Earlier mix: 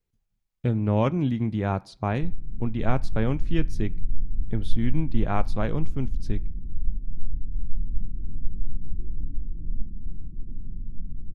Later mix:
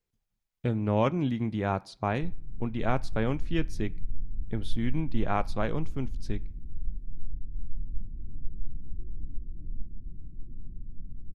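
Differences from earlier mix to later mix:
background: send off; master: add low shelf 250 Hz -6.5 dB

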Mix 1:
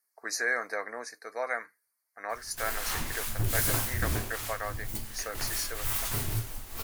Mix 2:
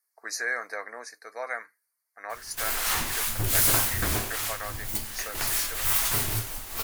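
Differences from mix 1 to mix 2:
background +7.5 dB; master: add low shelf 360 Hz -8.5 dB

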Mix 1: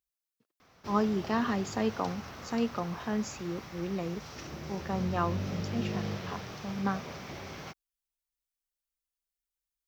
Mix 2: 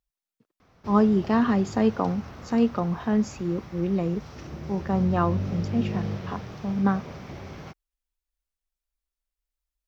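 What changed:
speech +5.0 dB; master: add tilt -2 dB/oct

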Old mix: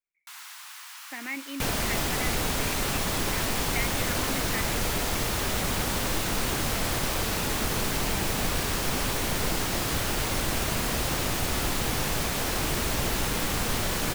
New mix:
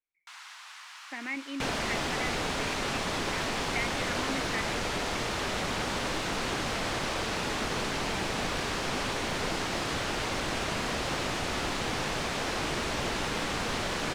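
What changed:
second sound: add low shelf 150 Hz -10.5 dB; master: add air absorption 85 m

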